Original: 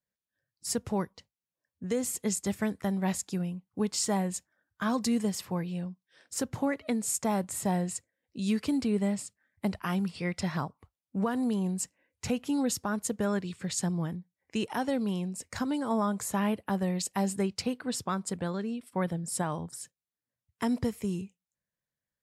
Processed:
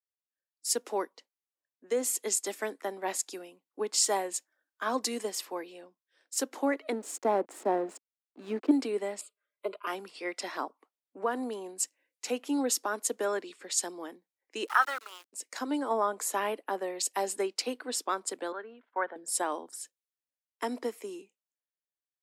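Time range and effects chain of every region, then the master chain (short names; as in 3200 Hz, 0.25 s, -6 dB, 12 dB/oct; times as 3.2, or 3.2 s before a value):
6.92–8.71 backlash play -35 dBFS + tilt -3 dB/oct
9.21–9.87 high shelf 5900 Hz -8.5 dB + fixed phaser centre 1200 Hz, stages 8 + comb 4.9 ms, depth 84%
14.67–15.33 resonant high-pass 1300 Hz, resonance Q 12 + sample gate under -42.5 dBFS
18.52–19.16 switching dead time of 0.052 ms + speaker cabinet 290–2700 Hz, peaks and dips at 330 Hz -9 dB, 500 Hz -4 dB, 930 Hz +3 dB, 1500 Hz +8 dB, 2500 Hz -7 dB
whole clip: steep high-pass 280 Hz 48 dB/oct; three-band expander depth 40%; gain +1.5 dB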